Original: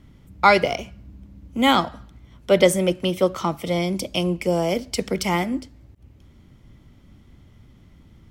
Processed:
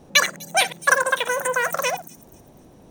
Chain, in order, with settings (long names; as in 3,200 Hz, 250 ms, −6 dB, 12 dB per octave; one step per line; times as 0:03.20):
delay that plays each chunk backwards 148 ms, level −12.5 dB
delay with a high-pass on its return 714 ms, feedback 32%, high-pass 3,600 Hz, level −8 dB
change of speed 2.86×